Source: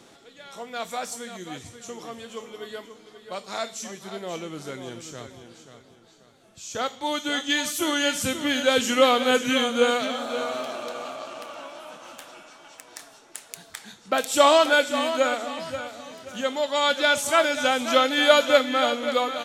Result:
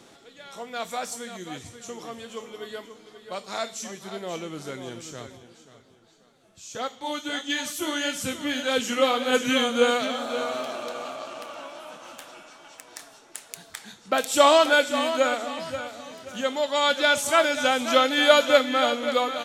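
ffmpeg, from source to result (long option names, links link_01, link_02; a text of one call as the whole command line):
ffmpeg -i in.wav -filter_complex "[0:a]asplit=3[link_01][link_02][link_03];[link_01]afade=type=out:start_time=5.36:duration=0.02[link_04];[link_02]flanger=delay=3.8:depth=7.2:regen=-41:speed=1.6:shape=sinusoidal,afade=type=in:start_time=5.36:duration=0.02,afade=type=out:start_time=9.32:duration=0.02[link_05];[link_03]afade=type=in:start_time=9.32:duration=0.02[link_06];[link_04][link_05][link_06]amix=inputs=3:normalize=0" out.wav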